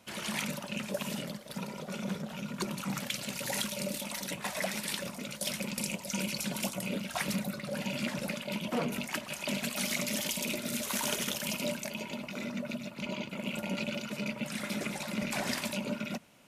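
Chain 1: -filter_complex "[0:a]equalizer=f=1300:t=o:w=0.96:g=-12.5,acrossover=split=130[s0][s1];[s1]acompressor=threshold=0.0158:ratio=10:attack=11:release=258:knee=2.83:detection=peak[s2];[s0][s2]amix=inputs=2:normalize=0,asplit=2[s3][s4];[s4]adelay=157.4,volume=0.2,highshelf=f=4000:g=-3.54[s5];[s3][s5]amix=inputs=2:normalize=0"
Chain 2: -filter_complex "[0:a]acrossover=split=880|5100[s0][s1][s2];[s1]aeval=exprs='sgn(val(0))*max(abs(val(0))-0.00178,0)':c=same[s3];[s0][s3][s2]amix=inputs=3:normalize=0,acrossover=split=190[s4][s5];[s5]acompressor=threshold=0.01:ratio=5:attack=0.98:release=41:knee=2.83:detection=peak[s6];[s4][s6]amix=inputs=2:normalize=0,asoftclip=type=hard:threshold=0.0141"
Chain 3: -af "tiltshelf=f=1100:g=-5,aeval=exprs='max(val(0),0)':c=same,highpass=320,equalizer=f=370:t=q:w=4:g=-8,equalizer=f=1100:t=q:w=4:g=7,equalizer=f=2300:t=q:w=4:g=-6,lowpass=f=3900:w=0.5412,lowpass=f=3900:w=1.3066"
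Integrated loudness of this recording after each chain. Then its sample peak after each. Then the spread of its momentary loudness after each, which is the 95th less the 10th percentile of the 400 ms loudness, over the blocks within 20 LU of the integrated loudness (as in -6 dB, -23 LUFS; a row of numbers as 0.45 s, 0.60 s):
-39.5 LUFS, -42.0 LUFS, -42.5 LUFS; -23.0 dBFS, -37.0 dBFS, -20.5 dBFS; 3 LU, 2 LU, 7 LU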